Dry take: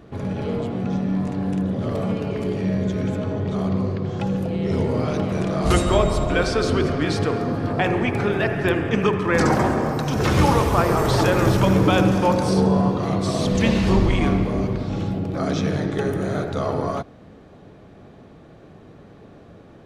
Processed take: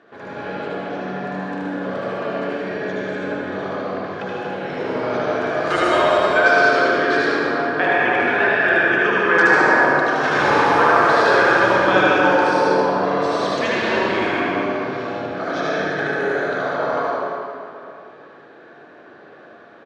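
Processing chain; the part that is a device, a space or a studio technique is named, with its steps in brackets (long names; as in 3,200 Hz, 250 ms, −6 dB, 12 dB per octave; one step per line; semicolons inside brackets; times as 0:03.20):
station announcement (band-pass filter 410–4,500 Hz; parametric band 1,600 Hz +11.5 dB 0.33 octaves; loudspeakers that aren't time-aligned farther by 26 metres −3 dB, 69 metres −12 dB; convolution reverb RT60 2.6 s, pre-delay 69 ms, DRR −4.5 dB)
level −2.5 dB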